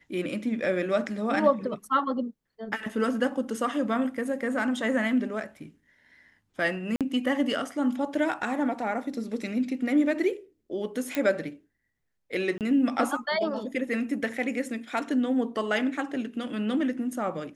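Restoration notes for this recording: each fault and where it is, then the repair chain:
0:06.96–0:07.01: drop-out 47 ms
0:11.15: click −13 dBFS
0:12.58–0:12.61: drop-out 28 ms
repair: click removal
repair the gap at 0:06.96, 47 ms
repair the gap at 0:12.58, 28 ms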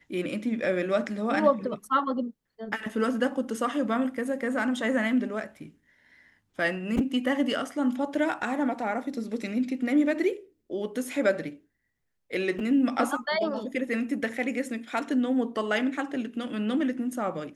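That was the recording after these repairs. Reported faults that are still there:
none of them is left

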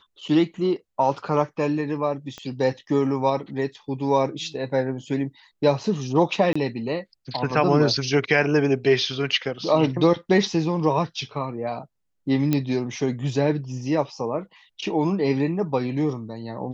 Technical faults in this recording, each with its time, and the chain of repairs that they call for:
0:02.38: click −22 dBFS
0:06.53–0:06.55: drop-out 25 ms
0:12.53: click −9 dBFS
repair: click removal
repair the gap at 0:06.53, 25 ms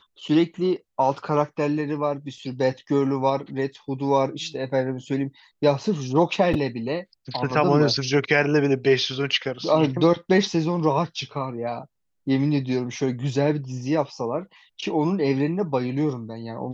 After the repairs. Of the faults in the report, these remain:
0:02.38: click
0:12.53: click

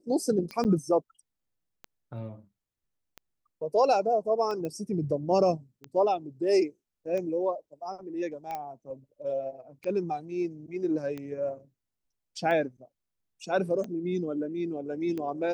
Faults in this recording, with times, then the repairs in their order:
scratch tick 45 rpm −24 dBFS
0:00.64–0:00.65: drop-out 9.5 ms
0:04.65: click −23 dBFS
0:08.55: click −22 dBFS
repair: click removal
repair the gap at 0:00.64, 9.5 ms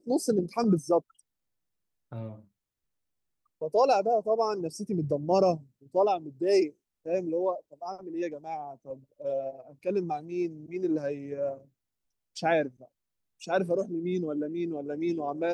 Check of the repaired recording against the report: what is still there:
0:04.65: click
0:08.55: click

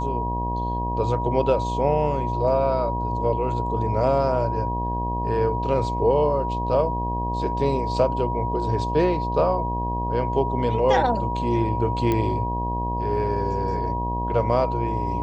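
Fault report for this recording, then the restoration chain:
mains buzz 60 Hz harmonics 18 −28 dBFS
whistle 960 Hz −27 dBFS
0:12.12: click −11 dBFS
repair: click removal
hum removal 60 Hz, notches 18
notch filter 960 Hz, Q 30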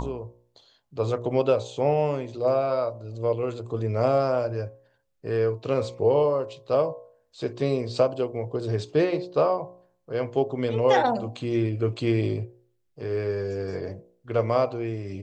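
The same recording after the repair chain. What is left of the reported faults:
0:12.12: click

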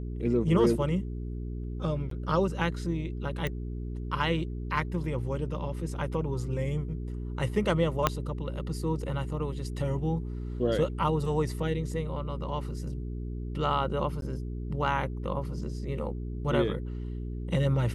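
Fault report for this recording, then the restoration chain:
mains hum 60 Hz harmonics 7 −35 dBFS
0:02.10–0:02.11: drop-out 13 ms
0:03.47: click −18 dBFS
0:08.07: click −8 dBFS
0:14.21–0:14.22: drop-out 12 ms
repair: click removal
hum removal 60 Hz, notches 7
repair the gap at 0:02.10, 13 ms
repair the gap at 0:14.21, 12 ms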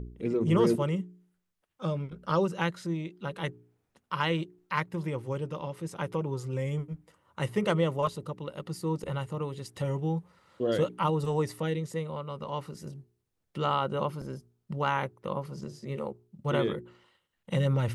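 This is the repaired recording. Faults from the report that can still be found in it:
0:08.07: click

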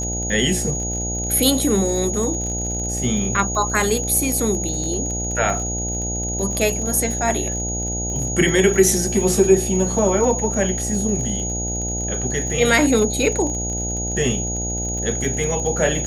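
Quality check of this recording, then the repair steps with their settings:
mains buzz 60 Hz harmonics 14 −27 dBFS
surface crackle 41 per second −27 dBFS
whistle 6,700 Hz −25 dBFS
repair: click removal
hum removal 60 Hz, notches 14
notch filter 6,700 Hz, Q 30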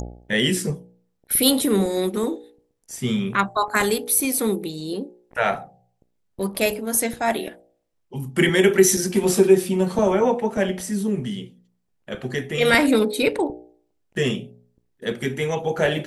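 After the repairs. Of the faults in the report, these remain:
none of them is left

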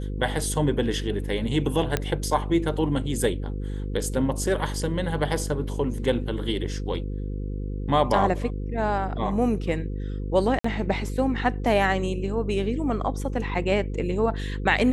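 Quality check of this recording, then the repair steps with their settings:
mains buzz 50 Hz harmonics 10 −30 dBFS
0:01.97: click −9 dBFS
0:10.59–0:10.64: drop-out 54 ms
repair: click removal
hum removal 50 Hz, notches 10
repair the gap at 0:10.59, 54 ms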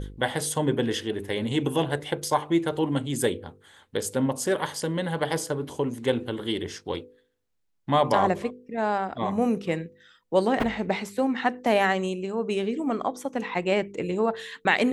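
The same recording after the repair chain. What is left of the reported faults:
none of them is left

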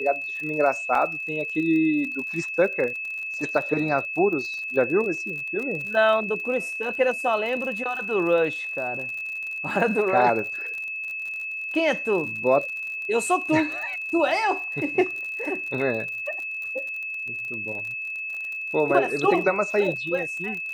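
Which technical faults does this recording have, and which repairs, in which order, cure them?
surface crackle 50 per second −32 dBFS
whistle 2,600 Hz −29 dBFS
0:00.95: drop-out 2.9 ms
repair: click removal
notch filter 2,600 Hz, Q 30
repair the gap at 0:00.95, 2.9 ms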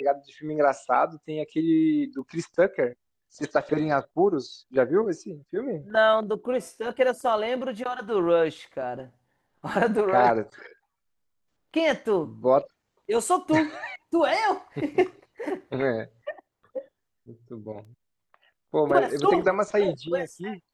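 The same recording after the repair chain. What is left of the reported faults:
none of them is left

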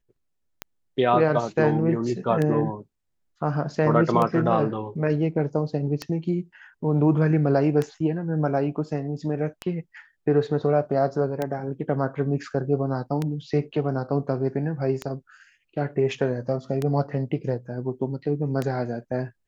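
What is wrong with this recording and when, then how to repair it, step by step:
scratch tick 33 1/3 rpm −13 dBFS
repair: click removal

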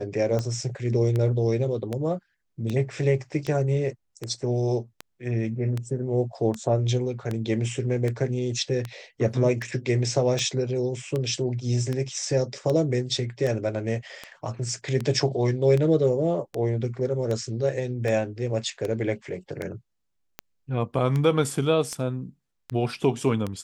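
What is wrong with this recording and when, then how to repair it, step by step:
scratch tick 78 rpm −16 dBFS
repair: click removal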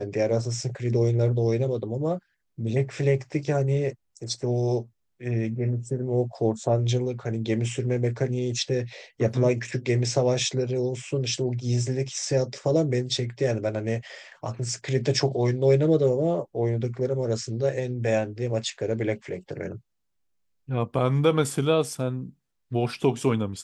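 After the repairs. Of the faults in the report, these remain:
none of them is left

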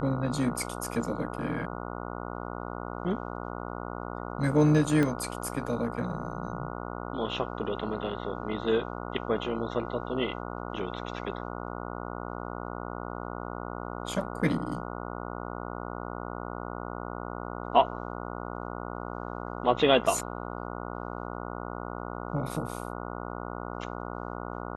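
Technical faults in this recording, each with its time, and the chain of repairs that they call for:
mains buzz 60 Hz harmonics 24 −37 dBFS
0:05.03: click −15 dBFS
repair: click removal
hum removal 60 Hz, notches 24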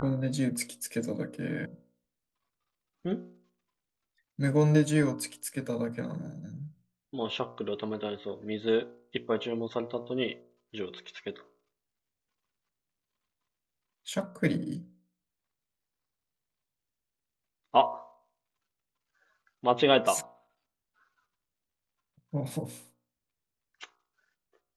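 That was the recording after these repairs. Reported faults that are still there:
0:05.03: click

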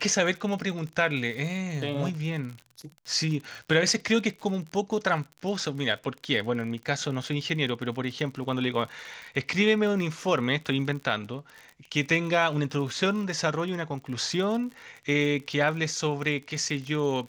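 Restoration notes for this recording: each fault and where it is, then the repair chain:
surface crackle 53 per second −35 dBFS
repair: click removal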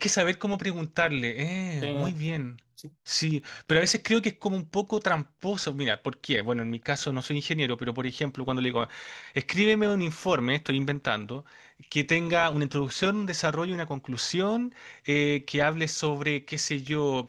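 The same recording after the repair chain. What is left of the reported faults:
none of them is left

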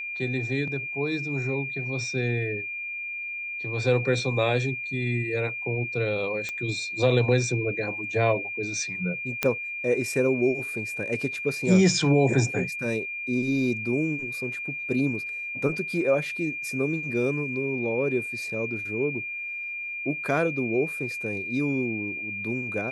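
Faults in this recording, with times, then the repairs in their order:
whistle 2,400 Hz −31 dBFS
0:06.49: click −18 dBFS
0:09.43: click −8 dBFS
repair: click removal
notch filter 2,400 Hz, Q 30

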